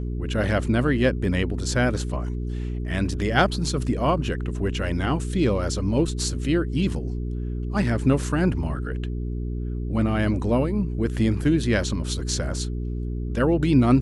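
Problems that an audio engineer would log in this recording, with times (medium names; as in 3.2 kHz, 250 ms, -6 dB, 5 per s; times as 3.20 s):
hum 60 Hz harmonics 7 -28 dBFS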